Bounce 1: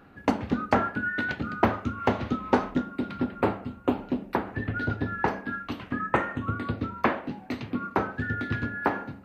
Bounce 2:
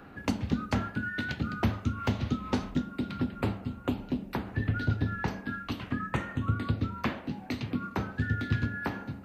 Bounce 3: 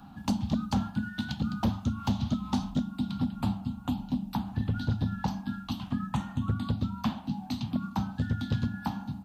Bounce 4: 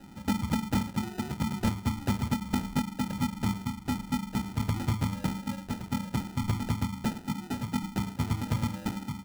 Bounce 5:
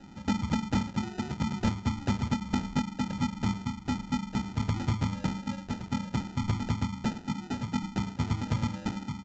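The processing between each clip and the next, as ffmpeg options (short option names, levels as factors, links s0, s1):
-filter_complex "[0:a]acrossover=split=200|3000[s0][s1][s2];[s1]acompressor=threshold=0.00708:ratio=3[s3];[s0][s3][s2]amix=inputs=3:normalize=0,volume=1.58"
-af "firequalizer=gain_entry='entry(110,0);entry(210,7);entry(430,-24);entry(790,5);entry(1200,-4);entry(2000,-15);entry(3300,3)':delay=0.05:min_phase=1,asoftclip=type=hard:threshold=0.0944"
-af "acrusher=samples=40:mix=1:aa=0.000001"
-af "aresample=16000,aresample=44100"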